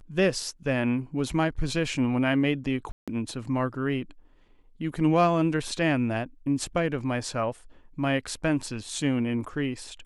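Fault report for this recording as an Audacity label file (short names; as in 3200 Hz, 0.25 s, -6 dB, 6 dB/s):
2.920000	3.080000	gap 0.156 s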